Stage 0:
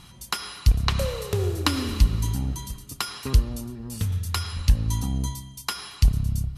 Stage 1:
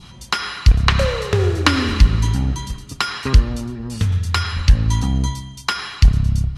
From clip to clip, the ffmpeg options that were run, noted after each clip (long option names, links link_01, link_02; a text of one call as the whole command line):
ffmpeg -i in.wav -af "lowpass=6100,adynamicequalizer=threshold=0.00398:dfrequency=1700:dqfactor=1.4:tfrequency=1700:tqfactor=1.4:attack=5:release=100:ratio=0.375:range=4:mode=boostabove:tftype=bell,aeval=exprs='0.891*sin(PI/2*1.58*val(0)/0.891)':channel_layout=same" out.wav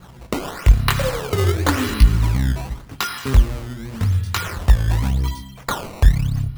ffmpeg -i in.wav -af "lowpass=frequency=6200:width=0.5412,lowpass=frequency=6200:width=1.3066,flanger=delay=16:depth=7.4:speed=0.41,acrusher=samples=15:mix=1:aa=0.000001:lfo=1:lforange=24:lforate=0.88,volume=1dB" out.wav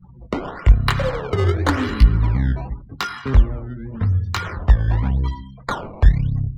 ffmpeg -i in.wav -filter_complex "[0:a]afftdn=noise_reduction=32:noise_floor=-37,bandreject=frequency=2600:width=15,acrossover=split=310|1200|2200[link_01][link_02][link_03][link_04];[link_04]adynamicsmooth=sensitivity=2:basefreq=3500[link_05];[link_01][link_02][link_03][link_05]amix=inputs=4:normalize=0" out.wav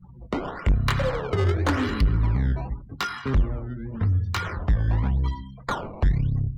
ffmpeg -i in.wav -af "asoftclip=type=tanh:threshold=-12.5dB,volume=-2dB" out.wav